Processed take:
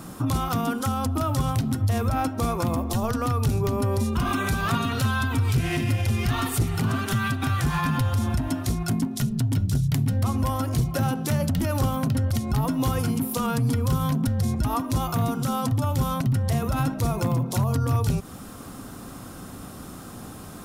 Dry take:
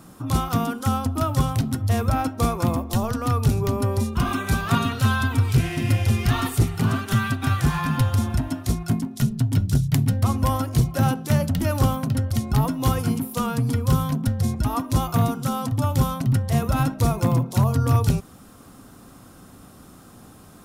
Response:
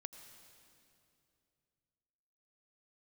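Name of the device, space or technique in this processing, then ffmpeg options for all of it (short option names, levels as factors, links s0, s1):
stacked limiters: -af "alimiter=limit=0.158:level=0:latency=1:release=247,alimiter=limit=0.0708:level=0:latency=1:release=121,volume=2.24"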